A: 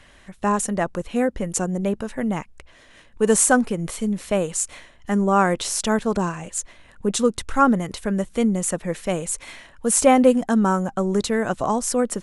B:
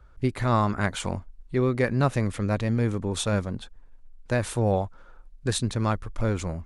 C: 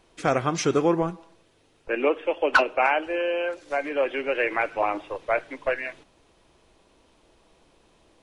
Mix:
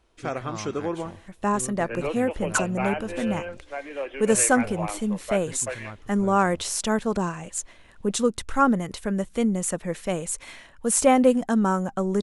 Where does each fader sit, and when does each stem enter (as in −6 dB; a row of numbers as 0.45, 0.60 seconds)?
−3.0, −15.0, −7.5 decibels; 1.00, 0.00, 0.00 seconds